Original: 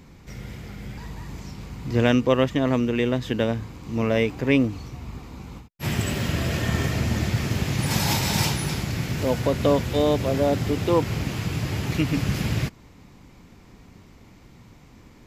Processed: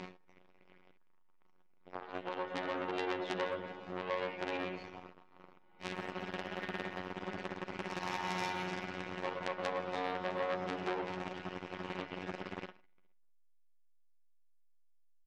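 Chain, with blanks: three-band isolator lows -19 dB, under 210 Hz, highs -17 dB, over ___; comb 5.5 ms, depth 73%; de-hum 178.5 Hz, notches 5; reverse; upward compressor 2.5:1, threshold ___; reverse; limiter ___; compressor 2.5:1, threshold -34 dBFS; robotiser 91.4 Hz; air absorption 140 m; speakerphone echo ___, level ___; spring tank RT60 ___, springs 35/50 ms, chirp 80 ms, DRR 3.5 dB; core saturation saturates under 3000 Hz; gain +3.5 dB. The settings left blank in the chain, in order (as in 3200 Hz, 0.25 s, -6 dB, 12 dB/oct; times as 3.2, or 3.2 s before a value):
5200 Hz, -32 dBFS, -13 dBFS, 0.12 s, -6 dB, 2.7 s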